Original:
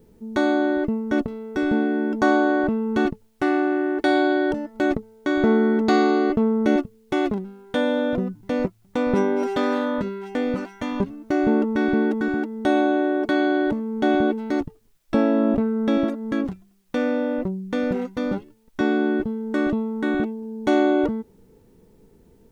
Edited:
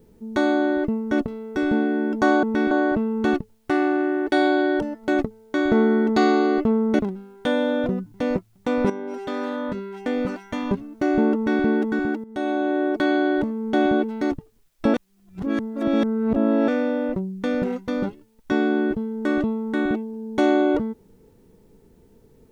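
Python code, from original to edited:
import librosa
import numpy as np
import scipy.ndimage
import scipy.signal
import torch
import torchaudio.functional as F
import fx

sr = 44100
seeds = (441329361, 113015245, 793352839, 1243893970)

y = fx.edit(x, sr, fx.cut(start_s=6.71, length_s=0.57),
    fx.fade_in_from(start_s=9.19, length_s=1.33, floor_db=-12.0),
    fx.duplicate(start_s=11.64, length_s=0.28, to_s=2.43),
    fx.fade_in_from(start_s=12.53, length_s=0.6, floor_db=-12.5),
    fx.reverse_span(start_s=15.23, length_s=1.74), tone=tone)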